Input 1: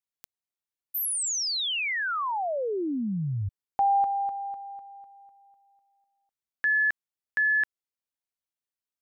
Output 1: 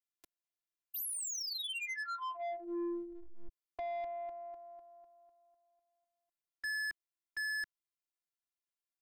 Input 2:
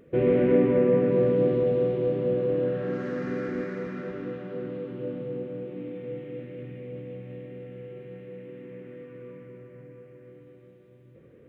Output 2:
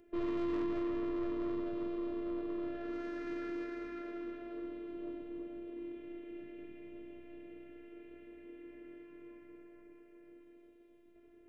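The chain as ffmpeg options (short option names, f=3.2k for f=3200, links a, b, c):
-filter_complex "[0:a]afftfilt=real='hypot(re,im)*cos(PI*b)':imag='0':win_size=512:overlap=0.75,acrossover=split=220[a][b];[b]asoftclip=type=tanh:threshold=-33dB[c];[a][c]amix=inputs=2:normalize=0,volume=-3dB"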